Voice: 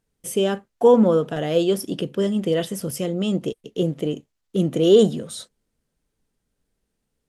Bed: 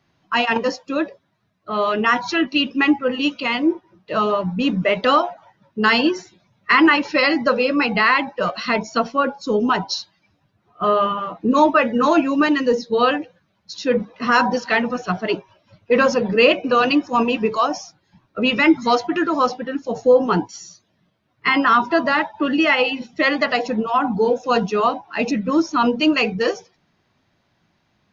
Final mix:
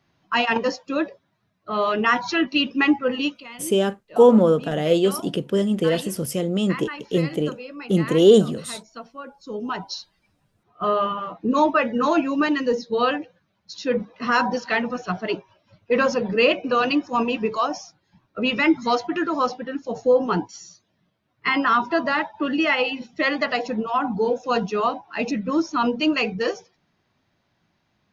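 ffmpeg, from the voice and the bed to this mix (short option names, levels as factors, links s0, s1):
-filter_complex "[0:a]adelay=3350,volume=1.12[s0];[1:a]volume=4.22,afade=t=out:st=3.19:d=0.25:silence=0.149624,afade=t=in:st=9.25:d=1.15:silence=0.188365[s1];[s0][s1]amix=inputs=2:normalize=0"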